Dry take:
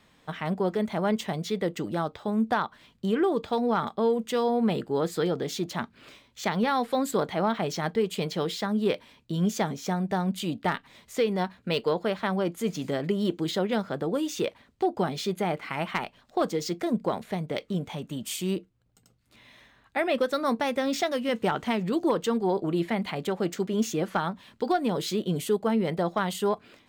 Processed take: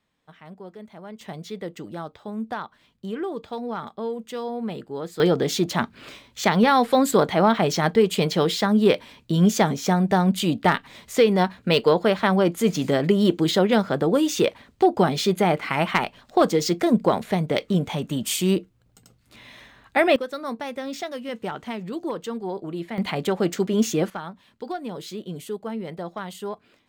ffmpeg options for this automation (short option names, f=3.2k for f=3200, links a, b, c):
-af "asetnsamples=n=441:p=0,asendcmd='1.21 volume volume -5dB;5.2 volume volume 8dB;20.16 volume volume -4.5dB;22.98 volume volume 5.5dB;24.1 volume volume -6dB',volume=-14dB"